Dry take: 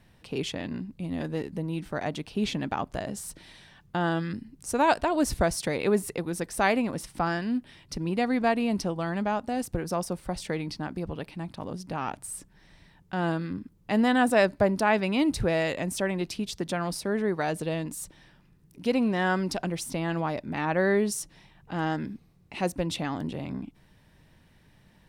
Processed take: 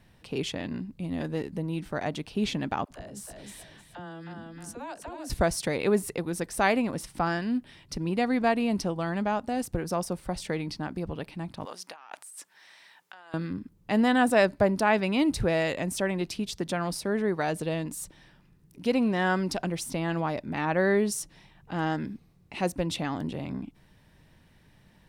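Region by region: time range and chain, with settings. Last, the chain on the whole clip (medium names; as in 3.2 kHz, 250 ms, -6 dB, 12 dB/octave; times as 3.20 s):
2.85–5.30 s: feedback delay 312 ms, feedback 23%, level -9 dB + compression 4:1, threshold -39 dBFS + phase dispersion lows, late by 56 ms, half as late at 380 Hz
11.65–13.34 s: high-pass 920 Hz + compressor with a negative ratio -46 dBFS
whole clip: none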